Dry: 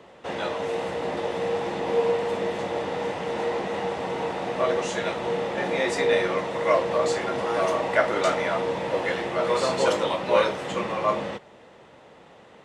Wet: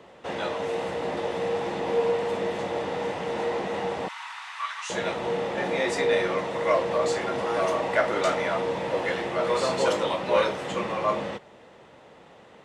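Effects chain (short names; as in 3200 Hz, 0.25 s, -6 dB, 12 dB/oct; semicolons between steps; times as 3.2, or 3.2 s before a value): 4.08–4.9 steep high-pass 1000 Hz 48 dB/oct; in parallel at -6.5 dB: soft clip -18.5 dBFS, distortion -14 dB; on the sum: gain -4 dB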